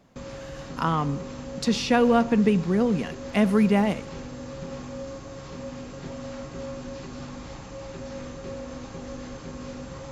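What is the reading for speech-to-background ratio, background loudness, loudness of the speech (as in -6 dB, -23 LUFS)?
14.5 dB, -38.0 LUFS, -23.5 LUFS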